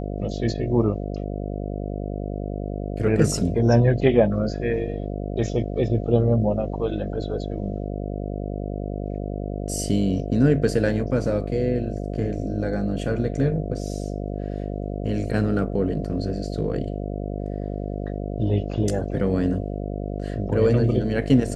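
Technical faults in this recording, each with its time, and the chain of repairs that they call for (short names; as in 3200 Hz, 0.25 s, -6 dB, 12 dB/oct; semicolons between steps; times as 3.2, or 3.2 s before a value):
buzz 50 Hz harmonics 14 -29 dBFS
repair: de-hum 50 Hz, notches 14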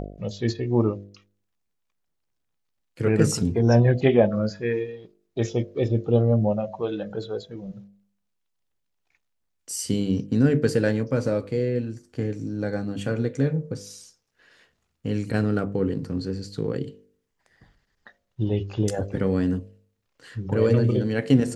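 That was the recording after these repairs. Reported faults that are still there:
none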